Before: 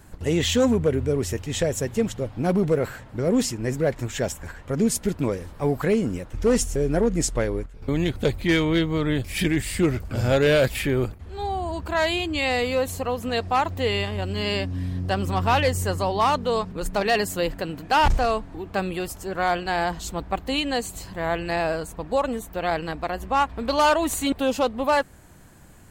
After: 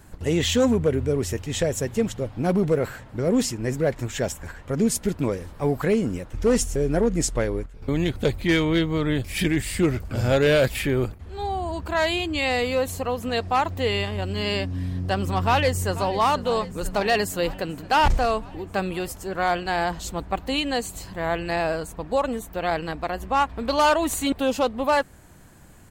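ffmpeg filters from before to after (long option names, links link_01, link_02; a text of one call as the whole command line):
ffmpeg -i in.wav -filter_complex "[0:a]asplit=2[link_01][link_02];[link_02]afade=type=in:start_time=15.42:duration=0.01,afade=type=out:start_time=16.15:duration=0.01,aecho=0:1:490|980|1470|1960|2450|2940|3430|3920|4410|4900:0.16788|0.12591|0.0944327|0.0708245|0.0531184|0.0398388|0.0298791|0.0224093|0.016807|0.0126052[link_03];[link_01][link_03]amix=inputs=2:normalize=0" out.wav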